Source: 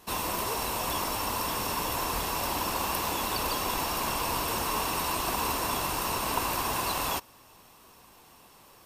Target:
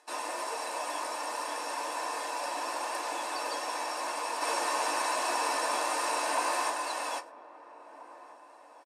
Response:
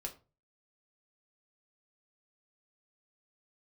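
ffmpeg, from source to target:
-filter_complex "[0:a]asettb=1/sr,asplit=3[a][b][c];[a]atrim=end=4.414[d];[b]atrim=start=4.41:end=6.7,asetpts=PTS-STARTPTS,afade=t=in:d=0.004:c=qsin,afade=t=out:st=2.286:d=0.004:c=qsin,aeval=exprs='val(0)+0.5*0.0447*sgn(val(0))':c=same[e];[c]atrim=start=6.696[f];[d][e]acrossfade=d=0.004:c1=hsin:c2=qsin[g];[g][f]acrossfade=d=0.004:c1=qsin:c2=hsin,agate=range=-28dB:threshold=-43dB:ratio=16:detection=peak,acompressor=mode=upward:threshold=-40dB:ratio=2.5,highpass=f=360:w=0.5412,highpass=f=360:w=1.3066,equalizer=f=590:t=q:w=4:g=5,equalizer=f=1.8k:t=q:w=4:g=6,equalizer=f=3.2k:t=q:w=4:g=-5,equalizer=f=8.8k:t=q:w=4:g=3,lowpass=f=9.5k:w=0.5412,lowpass=f=9.5k:w=1.3066,asplit=2[h][i];[i]adelay=1633,volume=-16dB,highshelf=f=4k:g=-36.7[j];[h][j]amix=inputs=2:normalize=0[k];[1:a]atrim=start_sample=2205,asetrate=83790,aresample=44100[l];[k][l]afir=irnorm=-1:irlink=0,volume=2.5dB"

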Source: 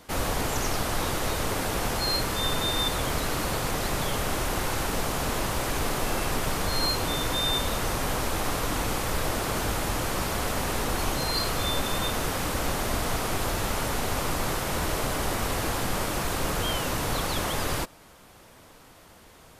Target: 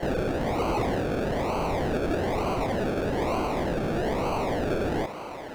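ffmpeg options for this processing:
-filter_complex "[0:a]lowpass=3.5k,tiltshelf=f=1.3k:g=-4,asetrate=155673,aresample=44100,acrusher=samples=35:mix=1:aa=0.000001:lfo=1:lforange=21:lforate=1.1,asplit=2[a][b];[b]highpass=f=720:p=1,volume=28dB,asoftclip=type=tanh:threshold=-28dB[c];[a][c]amix=inputs=2:normalize=0,lowpass=f=1.9k:p=1,volume=-6dB,volume=4.5dB"

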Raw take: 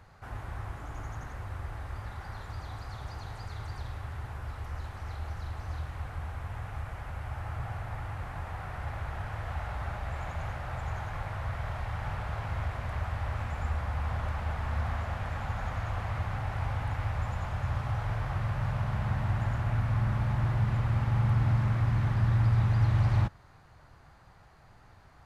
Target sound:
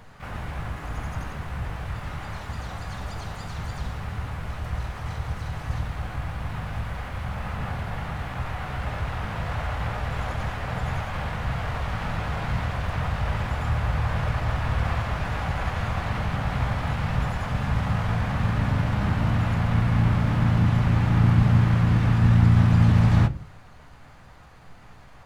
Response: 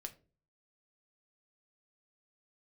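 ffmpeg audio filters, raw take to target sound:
-filter_complex "[0:a]bandreject=f=48.96:t=h:w=4,bandreject=f=97.92:t=h:w=4,bandreject=f=146.88:t=h:w=4,bandreject=f=195.84:t=h:w=4,bandreject=f=244.8:t=h:w=4,bandreject=f=293.76:t=h:w=4,bandreject=f=342.72:t=h:w=4,bandreject=f=391.68:t=h:w=4,bandreject=f=440.64:t=h:w=4,asplit=4[a][b][c][d];[b]asetrate=33038,aresample=44100,atempo=1.33484,volume=-6dB[e];[c]asetrate=66075,aresample=44100,atempo=0.66742,volume=-5dB[f];[d]asetrate=88200,aresample=44100,atempo=0.5,volume=-12dB[g];[a][e][f][g]amix=inputs=4:normalize=0,asplit=2[h][i];[1:a]atrim=start_sample=2205[j];[i][j]afir=irnorm=-1:irlink=0,volume=6.5dB[k];[h][k]amix=inputs=2:normalize=0,volume=-1.5dB"

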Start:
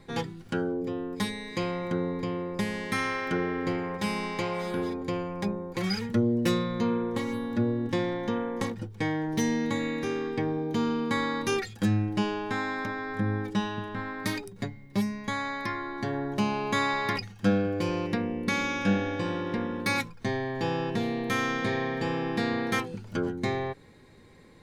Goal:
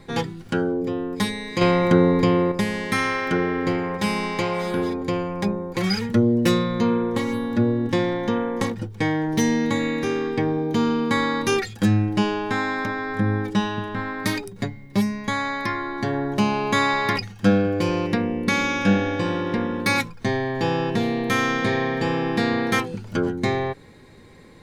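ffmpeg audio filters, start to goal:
-filter_complex "[0:a]asettb=1/sr,asplit=3[a][b][c];[a]atrim=end=1.614[d];[b]atrim=start=1.61:end=2.52,asetpts=PTS-STARTPTS,afade=t=in:d=0.004:c=qsin,afade=t=out:st=0.906:d=0.004:c=qsin,acontrast=78[e];[c]atrim=start=2.516[f];[d][e]acrossfade=d=0.004:c1=hsin:c2=qsin[g];[g][f]acrossfade=d=0.004:c1=qsin:c2=hsin,volume=6.5dB"

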